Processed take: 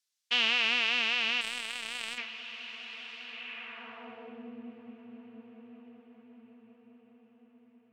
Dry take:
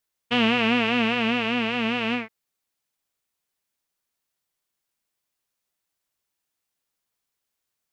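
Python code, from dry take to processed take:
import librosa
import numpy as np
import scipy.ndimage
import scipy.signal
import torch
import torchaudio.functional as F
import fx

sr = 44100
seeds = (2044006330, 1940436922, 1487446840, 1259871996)

y = fx.echo_diffused(x, sr, ms=1093, feedback_pct=50, wet_db=-14)
y = fx.filter_sweep_bandpass(y, sr, from_hz=5200.0, to_hz=300.0, start_s=3.2, end_s=4.52, q=1.1)
y = fx.power_curve(y, sr, exponent=2.0, at=(1.41, 2.18))
y = y * 10.0 ** (4.0 / 20.0)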